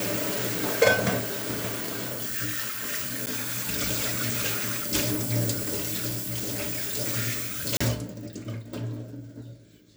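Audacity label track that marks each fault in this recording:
3.260000	3.270000	dropout 9.5 ms
6.060000	6.940000	clipped -26.5 dBFS
7.770000	7.800000	dropout 35 ms

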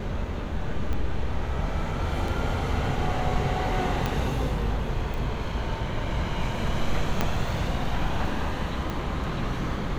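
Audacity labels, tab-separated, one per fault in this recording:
0.930000	0.930000	pop -19 dBFS
2.280000	2.280000	dropout 2.6 ms
4.060000	4.060000	pop -12 dBFS
5.140000	5.140000	pop
7.210000	7.210000	pop -9 dBFS
8.900000	8.900000	pop

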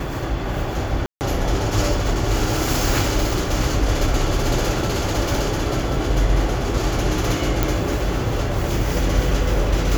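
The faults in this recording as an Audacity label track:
1.060000	1.210000	dropout 149 ms
7.630000	7.630000	pop

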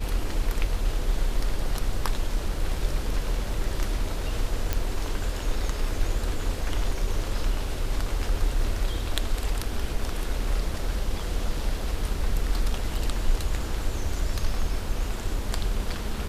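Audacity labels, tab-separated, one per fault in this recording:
4.730000	4.730000	pop -10 dBFS

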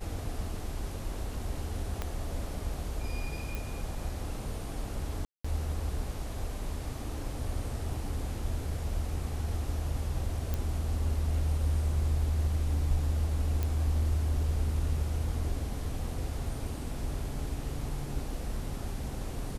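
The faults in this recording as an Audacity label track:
2.020000	2.020000	pop -19 dBFS
3.550000	3.550000	pop
5.250000	5.450000	dropout 195 ms
10.540000	10.540000	pop -18 dBFS
13.630000	13.630000	pop -18 dBFS

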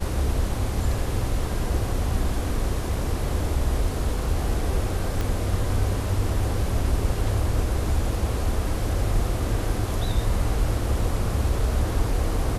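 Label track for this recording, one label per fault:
5.210000	5.210000	pop

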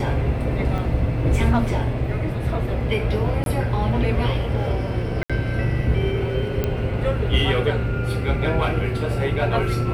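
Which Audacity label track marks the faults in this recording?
0.780000	0.780000	dropout 4.6 ms
3.440000	3.460000	dropout 22 ms
5.230000	5.300000	dropout 66 ms
6.640000	6.640000	pop -10 dBFS

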